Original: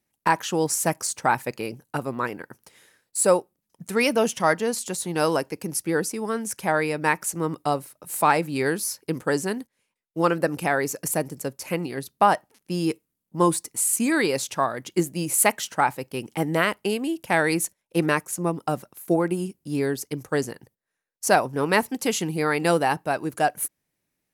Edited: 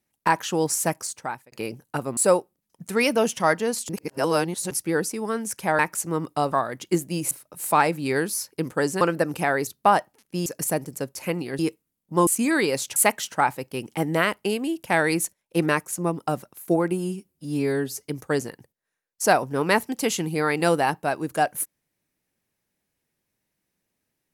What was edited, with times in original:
0.81–1.52 fade out
2.17–3.17 cut
4.89–5.71 reverse
6.79–7.08 cut
9.51–10.24 cut
12.03–12.82 move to 10.9
13.5–13.88 cut
14.57–15.36 move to 7.81
19.33–20.08 stretch 1.5×

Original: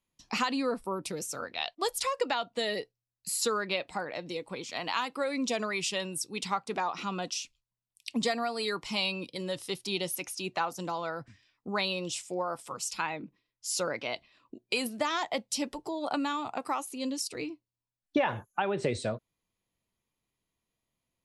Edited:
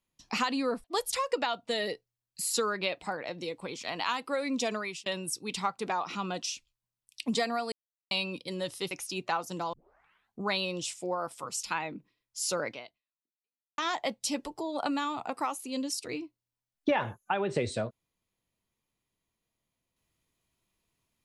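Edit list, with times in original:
0.84–1.72 cut
5.51–5.94 fade out equal-power
8.6–8.99 mute
9.79–10.19 cut
11.01 tape start 0.70 s
13.98–15.06 fade out exponential

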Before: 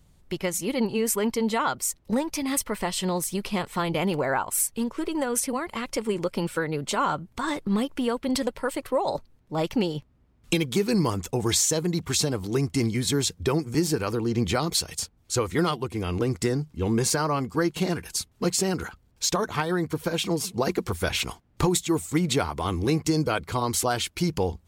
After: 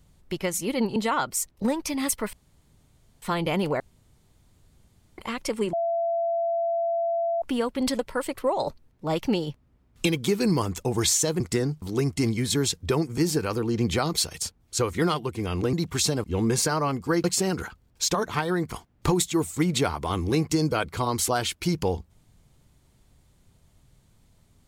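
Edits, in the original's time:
0.96–1.44 cut
2.81–3.7 room tone
4.28–5.66 room tone
6.21–7.9 bleep 675 Hz -22.5 dBFS
11.88–12.39 swap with 16.3–16.72
17.72–18.45 cut
19.93–21.27 cut

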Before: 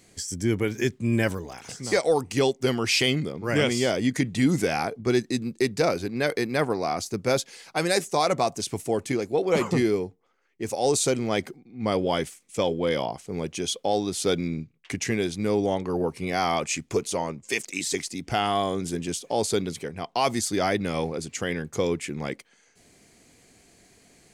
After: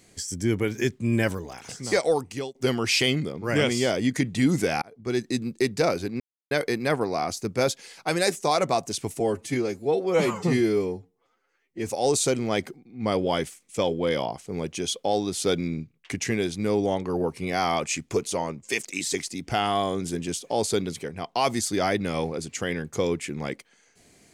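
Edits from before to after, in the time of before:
2.07–2.55 fade out, to -23 dB
4.82–5.32 fade in
6.2 insert silence 0.31 s
8.89–10.67 stretch 1.5×

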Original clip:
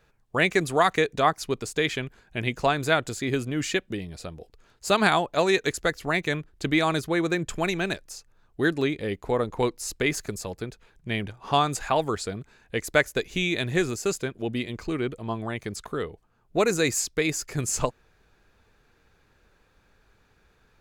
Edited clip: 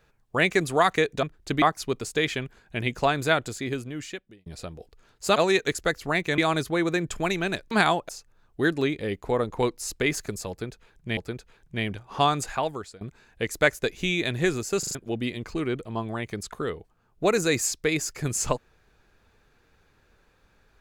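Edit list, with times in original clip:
2.94–4.07 fade out
4.97–5.35 move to 8.09
6.37–6.76 move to 1.23
10.5–11.17 loop, 2 plays
11.72–12.34 fade out, to -21 dB
14.12 stutter in place 0.04 s, 4 plays

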